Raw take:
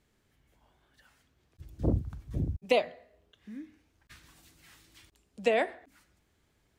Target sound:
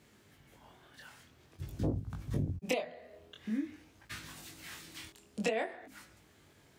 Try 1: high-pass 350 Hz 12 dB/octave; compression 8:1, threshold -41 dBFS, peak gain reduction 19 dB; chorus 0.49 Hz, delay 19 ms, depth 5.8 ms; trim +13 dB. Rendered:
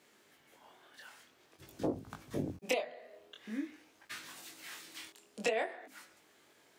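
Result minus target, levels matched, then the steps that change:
125 Hz band -9.5 dB
change: high-pass 91 Hz 12 dB/octave

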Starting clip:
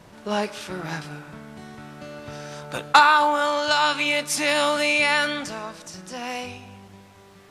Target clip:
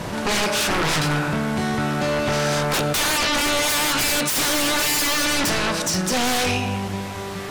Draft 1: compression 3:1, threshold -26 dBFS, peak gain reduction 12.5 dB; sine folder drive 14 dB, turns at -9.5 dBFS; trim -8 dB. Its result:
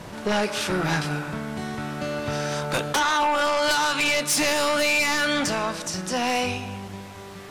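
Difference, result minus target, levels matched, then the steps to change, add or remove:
sine folder: distortion -14 dB
change: sine folder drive 24 dB, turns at -9.5 dBFS

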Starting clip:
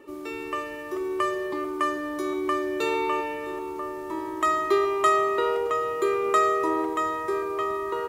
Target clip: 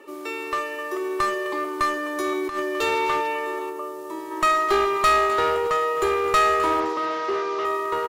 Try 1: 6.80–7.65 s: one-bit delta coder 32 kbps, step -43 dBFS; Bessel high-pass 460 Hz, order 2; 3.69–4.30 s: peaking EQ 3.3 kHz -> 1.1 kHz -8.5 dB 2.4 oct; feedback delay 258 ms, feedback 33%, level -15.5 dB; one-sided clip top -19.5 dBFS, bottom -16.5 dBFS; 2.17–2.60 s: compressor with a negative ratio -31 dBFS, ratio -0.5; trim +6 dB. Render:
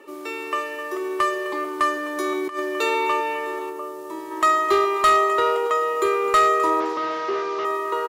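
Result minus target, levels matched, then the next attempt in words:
one-sided clip: distortion -8 dB
6.80–7.65 s: one-bit delta coder 32 kbps, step -43 dBFS; Bessel high-pass 460 Hz, order 2; 3.69–4.30 s: peaking EQ 3.3 kHz -> 1.1 kHz -8.5 dB 2.4 oct; feedback delay 258 ms, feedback 33%, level -15.5 dB; one-sided clip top -26.5 dBFS, bottom -16.5 dBFS; 2.17–2.60 s: compressor with a negative ratio -31 dBFS, ratio -0.5; trim +6 dB

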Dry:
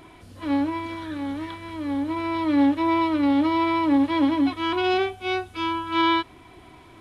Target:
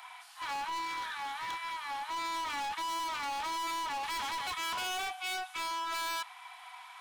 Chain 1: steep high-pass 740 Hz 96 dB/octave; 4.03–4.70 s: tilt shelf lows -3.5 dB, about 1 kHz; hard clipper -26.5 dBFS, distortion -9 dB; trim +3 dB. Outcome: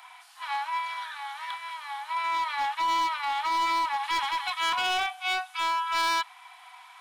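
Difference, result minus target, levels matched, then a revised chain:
hard clipper: distortion -6 dB
steep high-pass 740 Hz 96 dB/octave; 4.03–4.70 s: tilt shelf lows -3.5 dB, about 1 kHz; hard clipper -37.5 dBFS, distortion -3 dB; trim +3 dB

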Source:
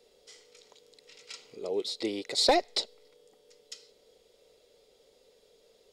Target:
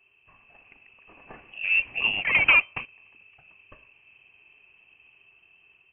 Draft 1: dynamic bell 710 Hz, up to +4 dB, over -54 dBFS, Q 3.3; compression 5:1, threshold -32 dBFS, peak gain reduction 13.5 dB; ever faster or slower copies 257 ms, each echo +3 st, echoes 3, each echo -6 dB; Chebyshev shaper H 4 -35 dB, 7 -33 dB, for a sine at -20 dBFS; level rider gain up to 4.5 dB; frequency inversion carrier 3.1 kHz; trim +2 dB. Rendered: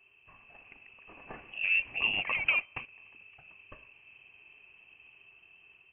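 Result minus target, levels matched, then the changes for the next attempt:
compression: peak gain reduction +13.5 dB
remove: compression 5:1, threshold -32 dBFS, peak gain reduction 13.5 dB

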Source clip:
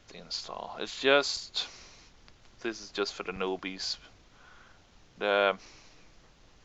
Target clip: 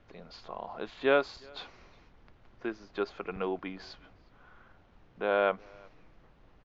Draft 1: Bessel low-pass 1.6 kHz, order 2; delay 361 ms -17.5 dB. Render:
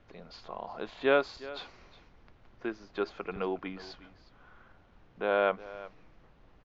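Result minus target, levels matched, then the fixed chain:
echo-to-direct +10 dB
Bessel low-pass 1.6 kHz, order 2; delay 361 ms -27.5 dB

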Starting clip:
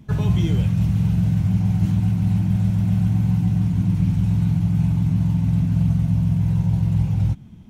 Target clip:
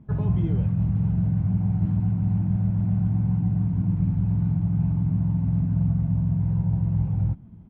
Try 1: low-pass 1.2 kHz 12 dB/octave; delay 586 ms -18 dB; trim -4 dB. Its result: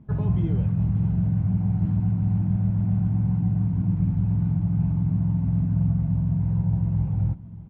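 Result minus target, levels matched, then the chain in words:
echo-to-direct +11 dB
low-pass 1.2 kHz 12 dB/octave; delay 586 ms -29 dB; trim -4 dB

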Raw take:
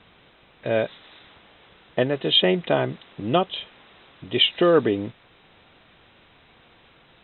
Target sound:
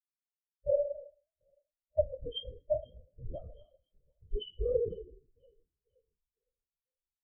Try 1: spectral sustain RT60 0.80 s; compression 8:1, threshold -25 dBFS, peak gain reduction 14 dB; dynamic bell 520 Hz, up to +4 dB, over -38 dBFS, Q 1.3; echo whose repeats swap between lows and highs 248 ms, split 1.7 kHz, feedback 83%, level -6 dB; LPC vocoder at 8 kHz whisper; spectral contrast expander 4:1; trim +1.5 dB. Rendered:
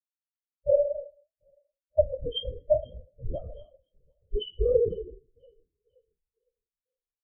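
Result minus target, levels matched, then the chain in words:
compression: peak gain reduction -6 dB
spectral sustain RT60 0.80 s; compression 8:1, threshold -32 dBFS, peak gain reduction 20 dB; dynamic bell 520 Hz, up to +4 dB, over -38 dBFS, Q 1.3; echo whose repeats swap between lows and highs 248 ms, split 1.7 kHz, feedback 83%, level -6 dB; LPC vocoder at 8 kHz whisper; spectral contrast expander 4:1; trim +1.5 dB

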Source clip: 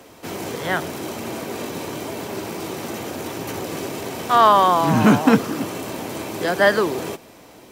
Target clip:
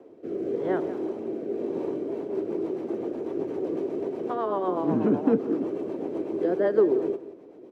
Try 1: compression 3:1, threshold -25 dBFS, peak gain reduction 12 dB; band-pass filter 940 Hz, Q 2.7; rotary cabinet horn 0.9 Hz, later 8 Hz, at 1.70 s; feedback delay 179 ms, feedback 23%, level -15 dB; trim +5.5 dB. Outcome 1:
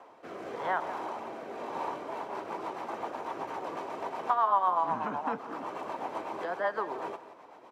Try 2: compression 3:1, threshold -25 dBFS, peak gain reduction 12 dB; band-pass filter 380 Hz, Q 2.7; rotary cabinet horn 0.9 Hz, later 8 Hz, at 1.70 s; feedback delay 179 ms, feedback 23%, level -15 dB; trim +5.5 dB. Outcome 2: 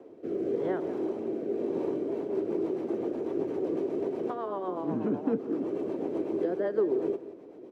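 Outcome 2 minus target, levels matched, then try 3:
compression: peak gain reduction +6.5 dB
compression 3:1, threshold -15 dBFS, peak gain reduction 5.5 dB; band-pass filter 380 Hz, Q 2.7; rotary cabinet horn 0.9 Hz, later 8 Hz, at 1.70 s; feedback delay 179 ms, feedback 23%, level -15 dB; trim +5.5 dB

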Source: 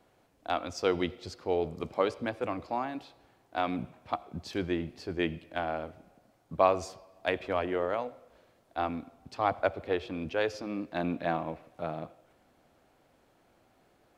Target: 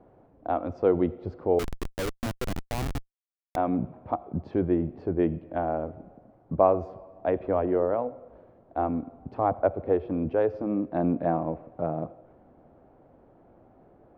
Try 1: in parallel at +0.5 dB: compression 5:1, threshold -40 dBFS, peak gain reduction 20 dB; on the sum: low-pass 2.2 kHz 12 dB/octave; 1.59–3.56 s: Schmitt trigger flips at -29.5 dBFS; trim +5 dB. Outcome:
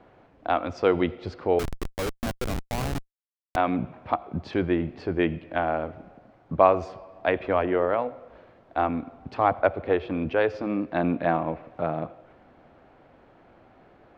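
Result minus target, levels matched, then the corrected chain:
2 kHz band +9.0 dB
in parallel at +0.5 dB: compression 5:1, threshold -40 dBFS, peak gain reduction 20 dB; on the sum: low-pass 750 Hz 12 dB/octave; 1.59–3.56 s: Schmitt trigger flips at -29.5 dBFS; trim +5 dB

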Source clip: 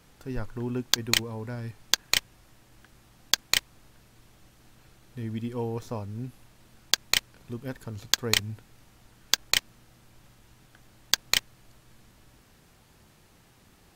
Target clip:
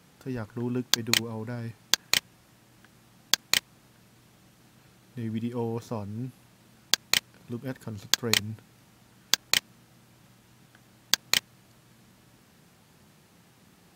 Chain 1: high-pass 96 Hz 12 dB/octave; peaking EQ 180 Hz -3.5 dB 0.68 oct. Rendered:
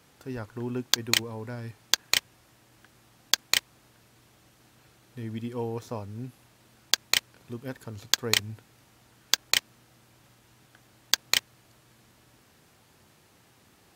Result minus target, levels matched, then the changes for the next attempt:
250 Hz band -3.5 dB
change: peaking EQ 180 Hz +5 dB 0.68 oct

